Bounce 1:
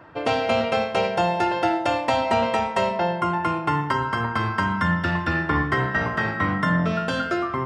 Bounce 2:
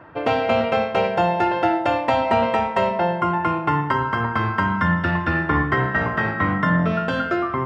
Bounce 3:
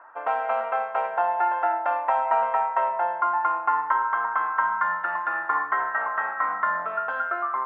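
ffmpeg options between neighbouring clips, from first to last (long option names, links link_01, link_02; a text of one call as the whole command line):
ffmpeg -i in.wav -af "bass=frequency=250:gain=0,treble=frequency=4000:gain=-13,volume=2.5dB" out.wav
ffmpeg -i in.wav -af "asuperpass=centerf=1100:order=4:qfactor=1.3" out.wav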